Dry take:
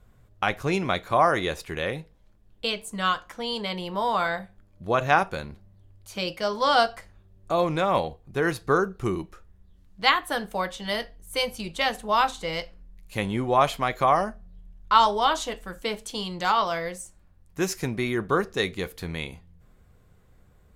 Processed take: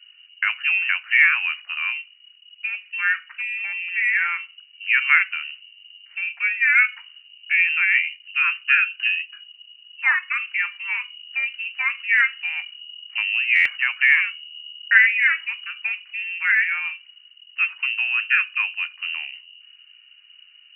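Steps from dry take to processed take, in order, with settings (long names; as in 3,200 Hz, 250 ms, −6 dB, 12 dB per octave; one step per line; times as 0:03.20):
voice inversion scrambler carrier 2,900 Hz
high-pass filter 1,400 Hz 24 dB per octave
buffer that repeats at 0:13.55, samples 512, times 8
level +4.5 dB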